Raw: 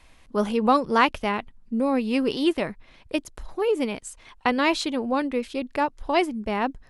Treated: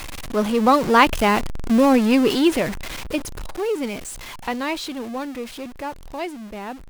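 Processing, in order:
converter with a step at zero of −26.5 dBFS
source passing by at 0:01.64, 6 m/s, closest 4.7 metres
level +6.5 dB

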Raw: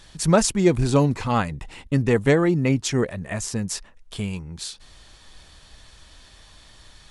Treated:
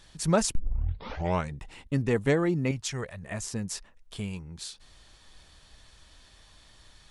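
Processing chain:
0:00.55: tape start 1.01 s
0:02.71–0:03.23: parametric band 290 Hz −13 dB 1.3 octaves
level −6.5 dB

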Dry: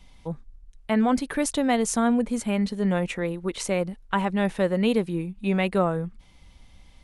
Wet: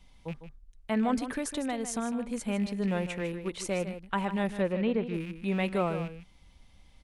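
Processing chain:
loose part that buzzes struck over −33 dBFS, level −30 dBFS
0:01.23–0:02.30: downward compressor 3 to 1, threshold −24 dBFS, peak gain reduction 6 dB
0:04.56–0:05.14: treble cut that deepens with the level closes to 2,200 Hz, closed at −18 dBFS
single-tap delay 153 ms −11 dB
level −6 dB

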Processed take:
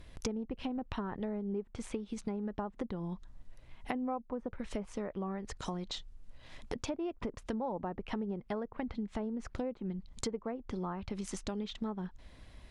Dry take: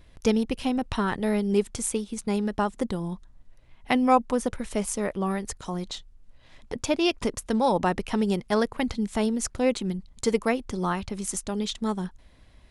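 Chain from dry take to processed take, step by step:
treble cut that deepens with the level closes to 1,100 Hz, closed at −21.5 dBFS
downward compressor 6 to 1, threshold −36 dBFS, peak gain reduction 19 dB
level +1 dB

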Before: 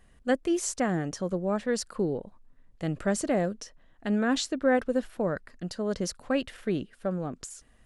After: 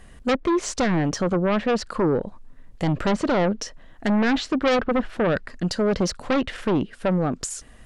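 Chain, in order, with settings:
treble cut that deepens with the level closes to 2,000 Hz, closed at −22.5 dBFS
in parallel at −10.5 dB: sine wavefolder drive 14 dB, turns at −13 dBFS
on the sum: level +2 dB

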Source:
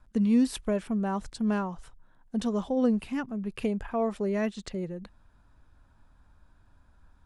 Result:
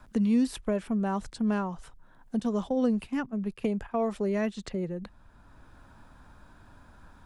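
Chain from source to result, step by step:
0:02.39–0:04.10: noise gate −35 dBFS, range −11 dB
multiband upward and downward compressor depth 40%

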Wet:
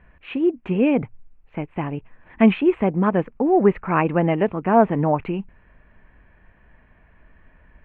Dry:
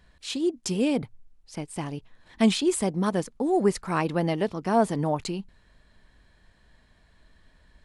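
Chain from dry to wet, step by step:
elliptic low-pass filter 2,600 Hz, stop band 50 dB
level +7 dB

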